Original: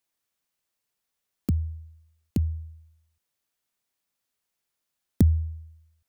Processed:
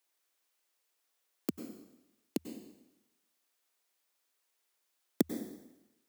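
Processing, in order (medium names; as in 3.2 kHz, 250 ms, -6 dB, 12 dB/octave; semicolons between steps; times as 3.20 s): high-pass 300 Hz 24 dB/octave; plate-style reverb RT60 0.95 s, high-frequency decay 0.95×, pre-delay 85 ms, DRR 6.5 dB; trim +2 dB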